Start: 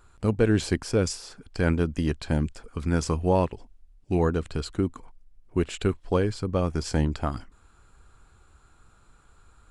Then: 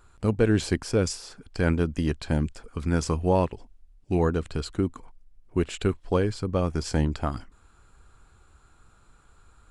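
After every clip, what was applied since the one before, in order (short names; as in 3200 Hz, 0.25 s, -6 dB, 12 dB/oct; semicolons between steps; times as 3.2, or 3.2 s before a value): nothing audible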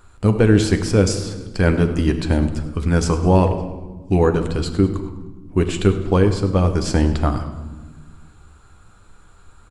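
frequency-shifting echo 0.102 s, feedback 51%, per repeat -73 Hz, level -17.5 dB; on a send at -7 dB: reverb RT60 1.3 s, pre-delay 10 ms; on the sum: gain +6.5 dB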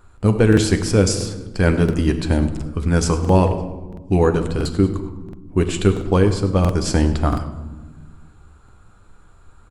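high shelf 6600 Hz +6 dB; crackling interface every 0.68 s, samples 2048, repeat, from 0.48; mismatched tape noise reduction decoder only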